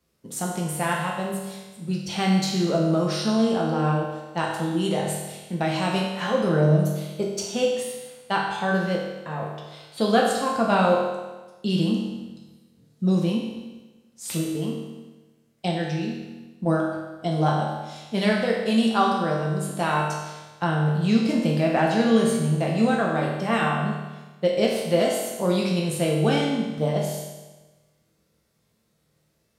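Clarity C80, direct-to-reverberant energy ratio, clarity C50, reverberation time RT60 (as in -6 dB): 4.0 dB, -3.0 dB, 2.0 dB, 1.2 s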